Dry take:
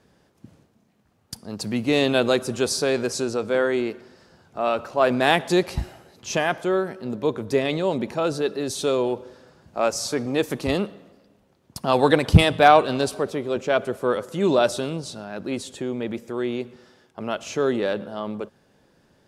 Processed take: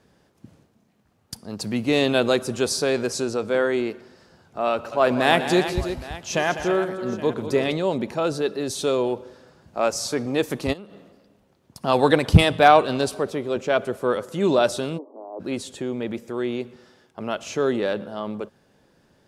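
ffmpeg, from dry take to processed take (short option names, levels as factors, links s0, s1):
-filter_complex "[0:a]asettb=1/sr,asplit=3[s0][s1][s2];[s0]atrim=end=4.724[s3];[s1]atrim=start=4.72:end=7.73,asetpts=PTS-STARTPTS,afade=t=in:d=0.004:c=qsin,afade=t=out:st=3.006:d=0.004:c=qsin,aecho=1:1:120|200|331|819:0.15|0.282|0.282|0.126,atrim=end_sample=132741[s4];[s2]atrim=start=7.726[s5];[s3][s4]acrossfade=d=0.004:c1=hsin:c2=qsin[s6];[s6][s5]acrossfade=d=0.004:c1=qsin:c2=hsin,asplit=3[s7][s8][s9];[s7]afade=t=out:st=10.72:d=0.02[s10];[s8]acompressor=threshold=0.0126:ratio=5:attack=3.2:release=140:knee=1:detection=peak,afade=t=in:st=10.72:d=0.02,afade=t=out:st=11.83:d=0.02[s11];[s9]afade=t=in:st=11.83:d=0.02[s12];[s10][s11][s12]amix=inputs=3:normalize=0,asplit=3[s13][s14][s15];[s13]afade=t=out:st=14.97:d=0.02[s16];[s14]asuperpass=centerf=530:order=20:qfactor=0.62,afade=t=in:st=14.97:d=0.02,afade=t=out:st=15.39:d=0.02[s17];[s15]afade=t=in:st=15.39:d=0.02[s18];[s16][s17][s18]amix=inputs=3:normalize=0"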